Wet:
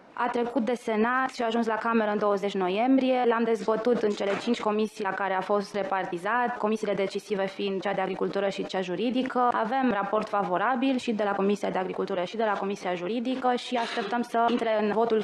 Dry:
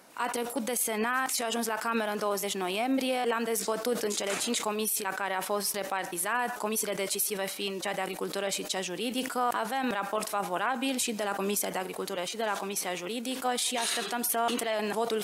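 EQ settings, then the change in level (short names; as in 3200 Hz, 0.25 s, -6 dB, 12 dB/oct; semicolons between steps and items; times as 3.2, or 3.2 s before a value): tape spacing loss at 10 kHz 33 dB; +7.5 dB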